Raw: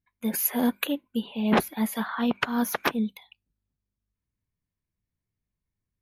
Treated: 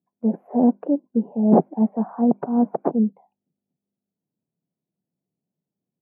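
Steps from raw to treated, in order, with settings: elliptic band-pass 160–750 Hz, stop band 70 dB; gain +8.5 dB

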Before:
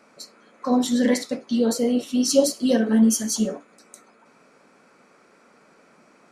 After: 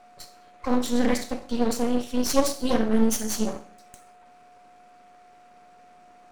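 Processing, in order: Schroeder reverb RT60 0.53 s, combs from 29 ms, DRR 10 dB; half-wave rectifier; whine 720 Hz -51 dBFS

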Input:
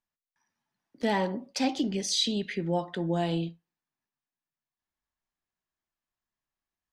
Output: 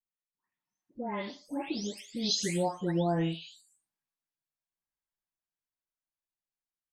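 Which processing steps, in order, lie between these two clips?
spectral delay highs late, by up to 0.539 s; Doppler pass-by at 3.08, 23 m/s, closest 23 m

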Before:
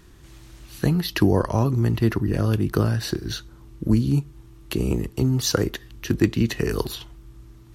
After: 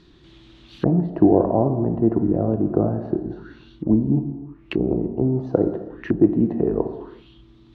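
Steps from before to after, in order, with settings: EQ curve 110 Hz 0 dB, 300 Hz +11 dB, 440 Hz +5 dB, 1900 Hz 0 dB; non-linear reverb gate 0.41 s falling, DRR 6 dB; envelope low-pass 700–4300 Hz down, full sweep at -19.5 dBFS; gain -6.5 dB

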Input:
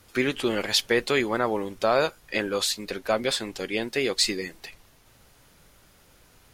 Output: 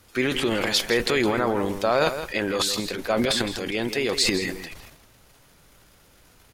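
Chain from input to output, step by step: transient shaper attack 0 dB, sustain +12 dB; outdoor echo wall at 28 m, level -10 dB

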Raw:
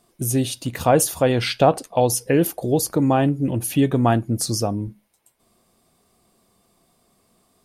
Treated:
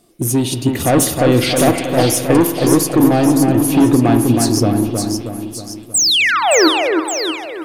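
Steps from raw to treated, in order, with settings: painted sound fall, 5.94–6.68, 290–8600 Hz -17 dBFS; thirty-one-band EQ 315 Hz +10 dB, 1000 Hz -9 dB, 1600 Hz -4 dB; soft clip -14.5 dBFS, distortion -10 dB; split-band echo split 2600 Hz, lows 0.317 s, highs 0.568 s, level -4.5 dB; spring tank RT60 1.1 s, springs 47 ms, chirp 65 ms, DRR 9 dB; gain +6 dB

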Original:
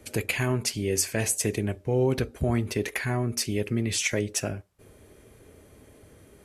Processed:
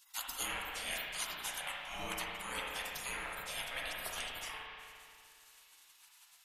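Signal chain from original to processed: spectral gate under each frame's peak -30 dB weak; spring tank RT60 2.4 s, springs 34/59 ms, chirp 80 ms, DRR -2 dB; gain +7.5 dB

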